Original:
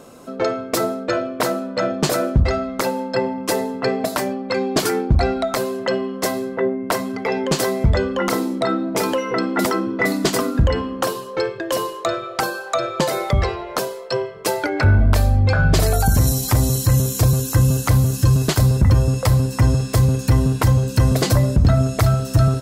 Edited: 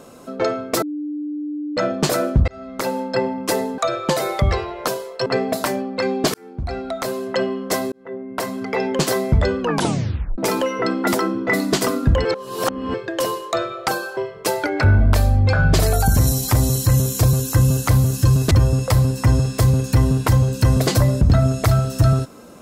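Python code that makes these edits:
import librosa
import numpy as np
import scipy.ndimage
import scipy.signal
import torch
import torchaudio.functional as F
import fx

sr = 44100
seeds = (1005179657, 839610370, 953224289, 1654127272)

y = fx.edit(x, sr, fx.bleep(start_s=0.82, length_s=0.95, hz=297.0, db=-23.5),
    fx.fade_in_span(start_s=2.48, length_s=0.47),
    fx.fade_in_span(start_s=4.86, length_s=1.03),
    fx.fade_in_span(start_s=6.44, length_s=0.77),
    fx.tape_stop(start_s=8.12, length_s=0.78),
    fx.reverse_span(start_s=10.77, length_s=0.69),
    fx.move(start_s=12.69, length_s=1.48, to_s=3.78),
    fx.cut(start_s=18.51, length_s=0.35), tone=tone)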